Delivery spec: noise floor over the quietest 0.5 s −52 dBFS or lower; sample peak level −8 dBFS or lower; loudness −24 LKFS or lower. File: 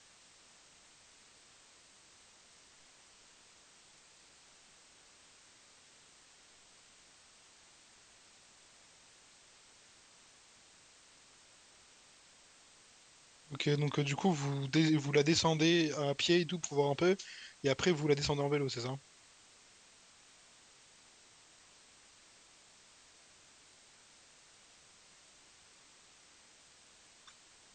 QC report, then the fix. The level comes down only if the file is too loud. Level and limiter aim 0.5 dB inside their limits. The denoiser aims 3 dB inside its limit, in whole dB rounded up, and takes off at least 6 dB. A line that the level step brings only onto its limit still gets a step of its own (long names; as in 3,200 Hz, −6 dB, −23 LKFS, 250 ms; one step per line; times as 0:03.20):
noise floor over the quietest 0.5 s −62 dBFS: in spec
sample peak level −15.0 dBFS: in spec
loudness −32.5 LKFS: in spec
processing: no processing needed